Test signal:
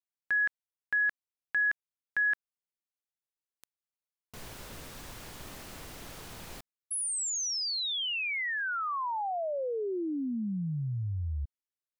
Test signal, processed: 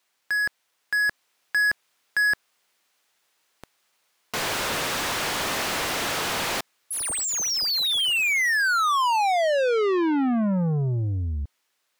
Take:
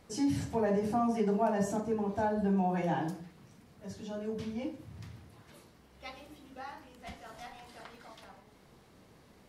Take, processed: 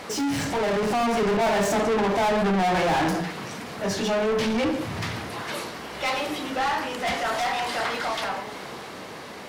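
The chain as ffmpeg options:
-filter_complex "[0:a]asplit=2[a][b];[b]highpass=f=720:p=1,volume=34dB,asoftclip=type=tanh:threshold=-19dB[c];[a][c]amix=inputs=2:normalize=0,lowpass=f=4k:p=1,volume=-6dB,dynaudnorm=f=120:g=17:m=3dB"

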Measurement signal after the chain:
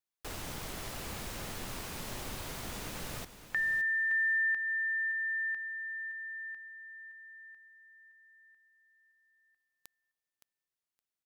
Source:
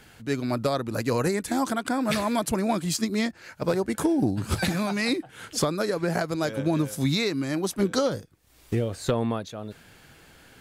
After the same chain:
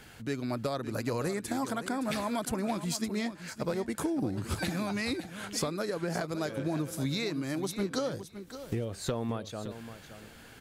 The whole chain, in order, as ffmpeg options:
-filter_complex "[0:a]acompressor=threshold=-35dB:ratio=2,asplit=2[a][b];[b]aecho=0:1:567|1134:0.251|0.0427[c];[a][c]amix=inputs=2:normalize=0"

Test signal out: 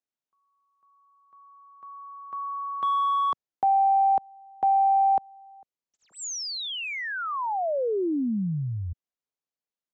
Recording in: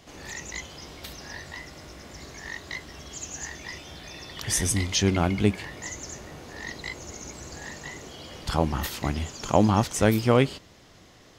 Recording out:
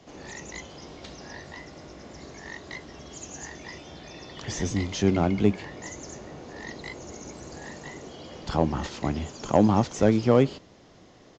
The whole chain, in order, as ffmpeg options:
-filter_complex "[0:a]acrossover=split=140|930[a][b][c];[b]acontrast=88[d];[c]asoftclip=type=hard:threshold=-26dB[e];[a][d][e]amix=inputs=3:normalize=0,aresample=16000,aresample=44100,volume=-4.5dB"

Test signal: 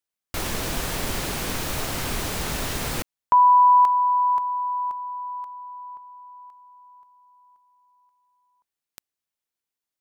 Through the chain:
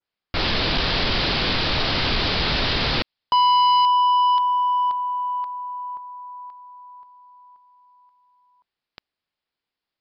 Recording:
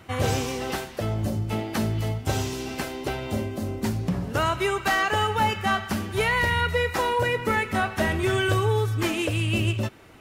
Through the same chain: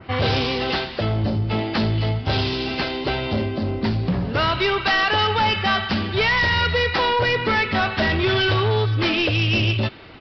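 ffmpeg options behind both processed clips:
-af "adynamicequalizer=threshold=0.00708:dfrequency=3900:dqfactor=0.95:tfrequency=3900:tqfactor=0.95:attack=5:release=100:ratio=0.375:range=4:mode=boostabove:tftype=bell,aresample=11025,asoftclip=type=tanh:threshold=-22dB,aresample=44100,volume=7dB"

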